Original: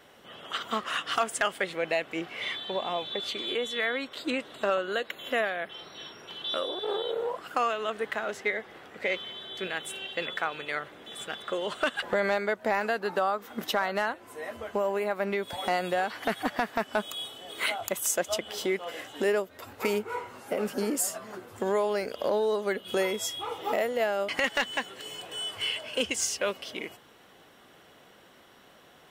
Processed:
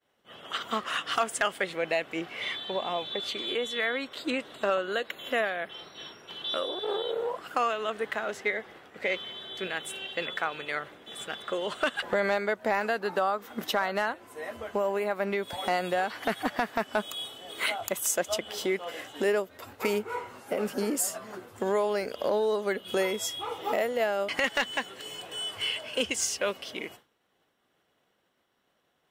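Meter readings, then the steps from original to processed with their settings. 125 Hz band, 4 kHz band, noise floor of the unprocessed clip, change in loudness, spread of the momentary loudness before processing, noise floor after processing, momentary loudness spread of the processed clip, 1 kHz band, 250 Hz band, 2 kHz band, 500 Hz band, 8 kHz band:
0.0 dB, 0.0 dB, -56 dBFS, 0.0 dB, 9 LU, -73 dBFS, 9 LU, 0.0 dB, 0.0 dB, 0.0 dB, 0.0 dB, 0.0 dB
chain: expander -44 dBFS

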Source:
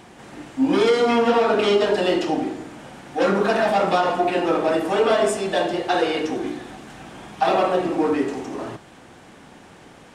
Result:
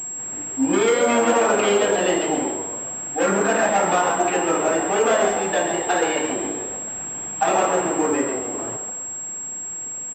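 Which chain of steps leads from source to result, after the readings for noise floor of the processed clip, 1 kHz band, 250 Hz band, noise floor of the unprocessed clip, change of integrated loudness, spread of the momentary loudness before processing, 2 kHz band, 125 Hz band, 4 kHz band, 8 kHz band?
-31 dBFS, +1.0 dB, -1.0 dB, -47 dBFS, -0.5 dB, 17 LU, +2.5 dB, -1.5 dB, -2.0 dB, +18.0 dB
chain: frequency-shifting echo 137 ms, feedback 49%, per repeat +94 Hz, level -8 dB; dynamic bell 2 kHz, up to +4 dB, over -34 dBFS, Q 1; class-D stage that switches slowly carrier 7.6 kHz; trim -1.5 dB

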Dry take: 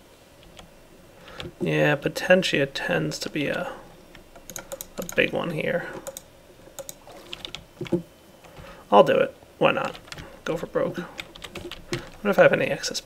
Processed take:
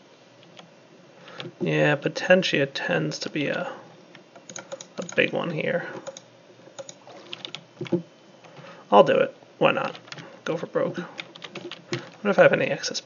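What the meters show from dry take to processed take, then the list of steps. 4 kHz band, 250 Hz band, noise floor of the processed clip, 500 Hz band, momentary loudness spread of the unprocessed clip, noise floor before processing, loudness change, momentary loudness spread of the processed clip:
0.0 dB, 0.0 dB, -53 dBFS, 0.0 dB, 20 LU, -51 dBFS, 0.0 dB, 21 LU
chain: FFT band-pass 110–6800 Hz

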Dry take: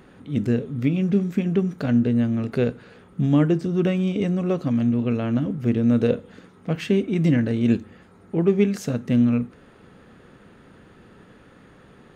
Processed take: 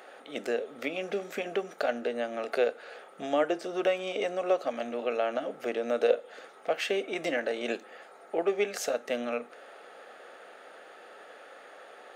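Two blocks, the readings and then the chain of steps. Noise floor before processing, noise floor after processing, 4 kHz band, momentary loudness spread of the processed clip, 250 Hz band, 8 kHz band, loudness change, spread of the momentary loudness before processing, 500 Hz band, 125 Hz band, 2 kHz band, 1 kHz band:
-51 dBFS, -52 dBFS, +1.0 dB, 21 LU, -18.5 dB, no reading, -9.0 dB, 7 LU, -2.5 dB, under -30 dB, +1.5 dB, +4.0 dB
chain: ladder high-pass 530 Hz, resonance 45%; band-stop 1 kHz, Q 5.2; in parallel at 0 dB: compression, threshold -44 dBFS, peak gain reduction 17 dB; on the sum: trim +6.5 dB

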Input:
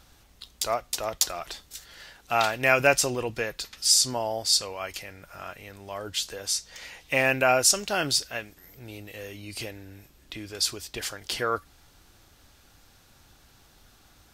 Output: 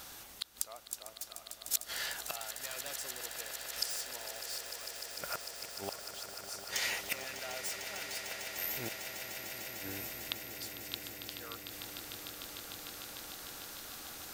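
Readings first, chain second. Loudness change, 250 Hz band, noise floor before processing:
-14.5 dB, -14.5 dB, -58 dBFS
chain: wavefolder -16 dBFS; treble shelf 2.5 kHz -10 dB; inverted gate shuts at -33 dBFS, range -30 dB; RIAA curve recording; echo with a slow build-up 150 ms, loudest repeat 8, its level -12 dB; trim +9 dB

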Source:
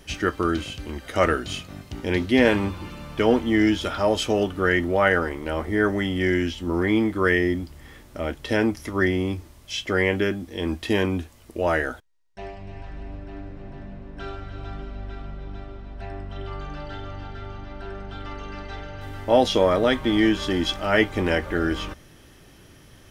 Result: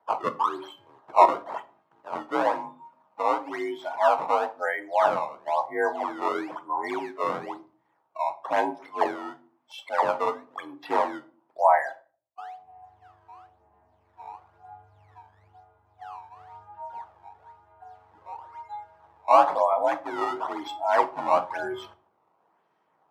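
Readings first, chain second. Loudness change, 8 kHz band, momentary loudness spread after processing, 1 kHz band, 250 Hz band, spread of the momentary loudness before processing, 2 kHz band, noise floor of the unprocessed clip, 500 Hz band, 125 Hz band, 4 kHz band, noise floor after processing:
-3.0 dB, under -10 dB, 21 LU, +6.5 dB, -15.5 dB, 19 LU, -9.0 dB, -50 dBFS, -4.0 dB, under -20 dB, -14.0 dB, -70 dBFS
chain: spectral noise reduction 20 dB; gain riding within 5 dB 0.5 s; decimation with a swept rate 16×, swing 160% 1 Hz; band-pass filter 860 Hz, Q 3.4; frequency shift +51 Hz; simulated room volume 330 m³, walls furnished, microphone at 0.59 m; trim +9 dB

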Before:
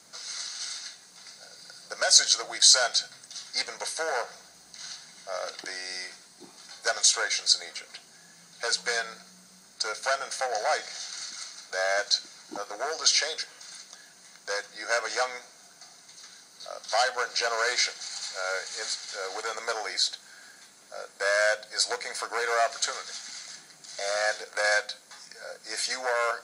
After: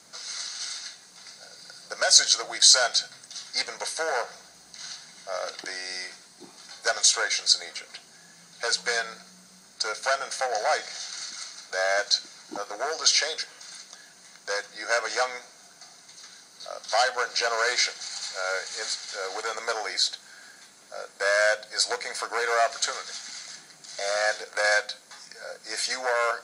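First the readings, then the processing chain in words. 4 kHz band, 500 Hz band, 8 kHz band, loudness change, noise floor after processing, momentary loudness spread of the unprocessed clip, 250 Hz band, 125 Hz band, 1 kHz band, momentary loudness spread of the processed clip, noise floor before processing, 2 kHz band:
+1.5 dB, +2.0 dB, +1.0 dB, +1.5 dB, -53 dBFS, 20 LU, +2.0 dB, no reading, +2.0 dB, 20 LU, -54 dBFS, +2.0 dB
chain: treble shelf 11 kHz -4 dB; trim +2 dB

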